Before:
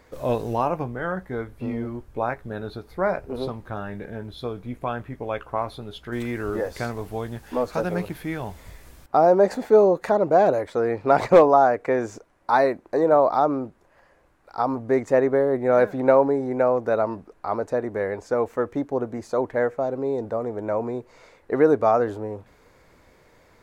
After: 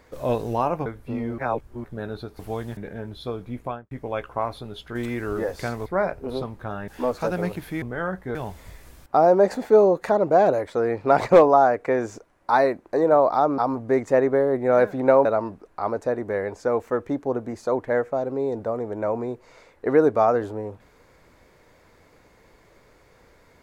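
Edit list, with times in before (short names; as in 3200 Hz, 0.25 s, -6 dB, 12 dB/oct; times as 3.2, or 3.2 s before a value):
0.86–1.39 move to 8.35
1.91–2.37 reverse
2.92–3.94 swap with 7.03–7.41
4.78–5.08 studio fade out
13.58–14.58 cut
16.25–16.91 cut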